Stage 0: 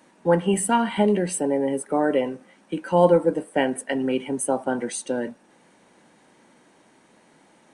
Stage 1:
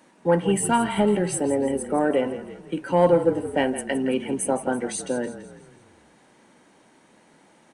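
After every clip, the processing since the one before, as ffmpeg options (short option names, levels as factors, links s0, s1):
-filter_complex "[0:a]asoftclip=type=tanh:threshold=0.422,asplit=2[s0][s1];[s1]asplit=5[s2][s3][s4][s5][s6];[s2]adelay=166,afreqshift=-35,volume=0.237[s7];[s3]adelay=332,afreqshift=-70,volume=0.114[s8];[s4]adelay=498,afreqshift=-105,volume=0.0543[s9];[s5]adelay=664,afreqshift=-140,volume=0.0263[s10];[s6]adelay=830,afreqshift=-175,volume=0.0126[s11];[s7][s8][s9][s10][s11]amix=inputs=5:normalize=0[s12];[s0][s12]amix=inputs=2:normalize=0"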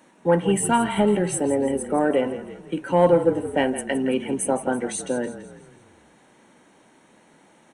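-af "bandreject=f=4800:w=5.4,volume=1.12"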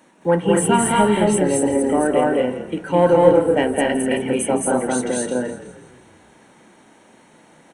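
-af "aecho=1:1:215.7|247.8:0.891|0.631,volume=1.19"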